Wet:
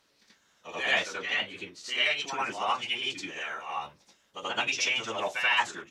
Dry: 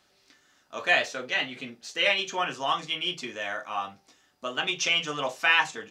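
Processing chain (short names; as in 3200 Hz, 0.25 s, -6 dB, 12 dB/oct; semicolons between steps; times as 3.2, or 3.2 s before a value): harmonic-percussive split harmonic -11 dB; formant-preserving pitch shift -5 st; reverse echo 82 ms -6 dB; gain +1 dB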